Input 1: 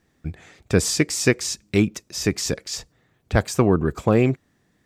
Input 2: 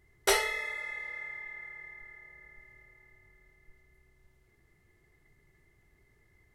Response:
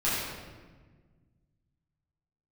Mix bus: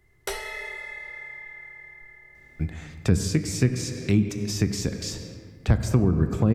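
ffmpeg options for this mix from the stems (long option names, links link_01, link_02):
-filter_complex "[0:a]adelay=2350,volume=0.5dB,asplit=2[link_01][link_02];[link_02]volume=-18.5dB[link_03];[1:a]volume=2dB,asplit=2[link_04][link_05];[link_05]volume=-23dB[link_06];[2:a]atrim=start_sample=2205[link_07];[link_03][link_06]amix=inputs=2:normalize=0[link_08];[link_08][link_07]afir=irnorm=-1:irlink=0[link_09];[link_01][link_04][link_09]amix=inputs=3:normalize=0,acrossover=split=250[link_10][link_11];[link_11]acompressor=threshold=-30dB:ratio=6[link_12];[link_10][link_12]amix=inputs=2:normalize=0"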